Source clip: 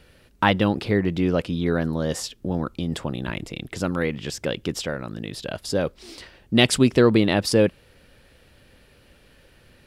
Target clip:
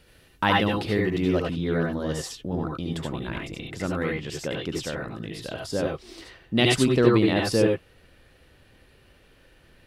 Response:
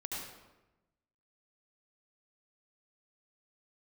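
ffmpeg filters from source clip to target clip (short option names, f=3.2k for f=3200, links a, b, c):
-filter_complex "[0:a]asetnsamples=n=441:p=0,asendcmd='1.39 highshelf g -3',highshelf=f=4k:g=5[a];[1:a]atrim=start_sample=2205,atrim=end_sample=4410[b];[a][b]afir=irnorm=-1:irlink=0"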